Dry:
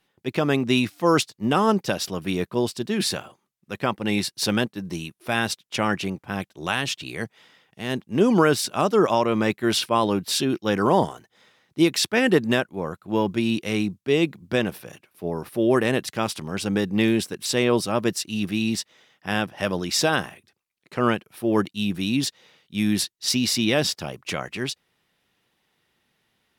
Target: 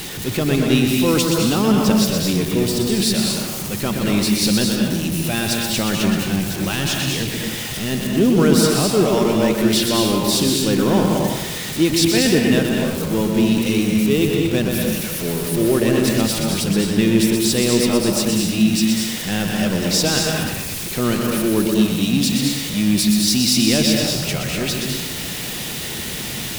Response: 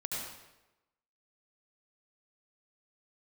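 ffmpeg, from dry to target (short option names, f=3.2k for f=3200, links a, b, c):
-filter_complex "[0:a]aeval=exprs='val(0)+0.5*0.0596*sgn(val(0))':c=same,equalizer=f=1.1k:t=o:w=2.2:g=-10,asplit=2[a][b];[1:a]atrim=start_sample=2205,adelay=124[c];[b][c]afir=irnorm=-1:irlink=0,volume=-2.5dB[d];[a][d]amix=inputs=2:normalize=0,volume=3dB"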